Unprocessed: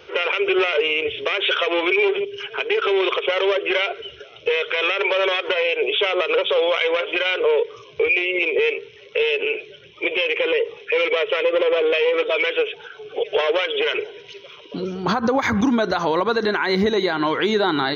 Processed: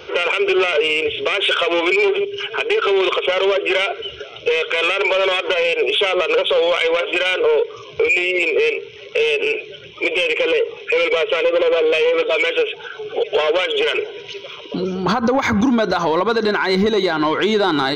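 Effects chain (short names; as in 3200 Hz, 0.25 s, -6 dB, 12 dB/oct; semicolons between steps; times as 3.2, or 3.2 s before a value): notch 1800 Hz, Q 7.6; in parallel at -0.5 dB: compressor, threshold -32 dBFS, peak gain reduction 16 dB; on the sum: soft clip -10 dBFS, distortion -22 dB; gain +2.5 dB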